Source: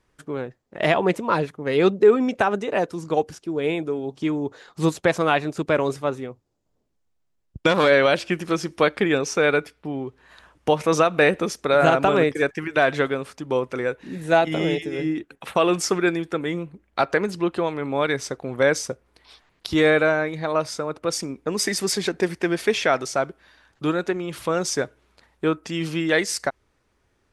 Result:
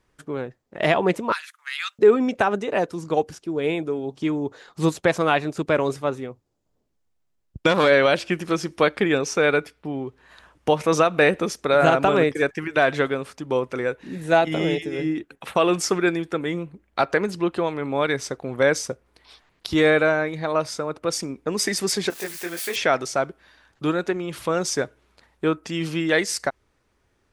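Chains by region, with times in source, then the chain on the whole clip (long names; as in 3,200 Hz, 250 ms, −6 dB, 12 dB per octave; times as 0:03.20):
0:01.32–0:01.99: Butterworth high-pass 1,300 Hz + high-shelf EQ 6,800 Hz +10 dB
0:22.10–0:22.76: spike at every zero crossing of −21 dBFS + low-shelf EQ 390 Hz −11.5 dB + micro pitch shift up and down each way 39 cents
whole clip: no processing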